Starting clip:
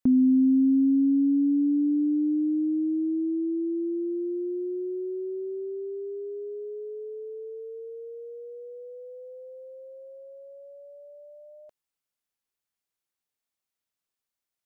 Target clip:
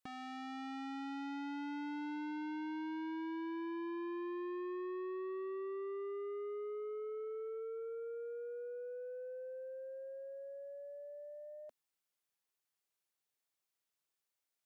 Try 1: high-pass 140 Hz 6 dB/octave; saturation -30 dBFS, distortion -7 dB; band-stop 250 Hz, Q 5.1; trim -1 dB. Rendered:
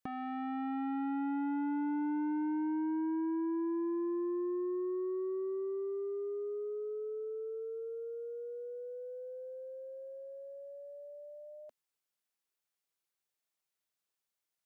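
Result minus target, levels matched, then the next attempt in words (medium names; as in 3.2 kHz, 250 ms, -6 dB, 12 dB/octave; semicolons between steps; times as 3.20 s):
saturation: distortion -5 dB
high-pass 140 Hz 6 dB/octave; saturation -39 dBFS, distortion -3 dB; band-stop 250 Hz, Q 5.1; trim -1 dB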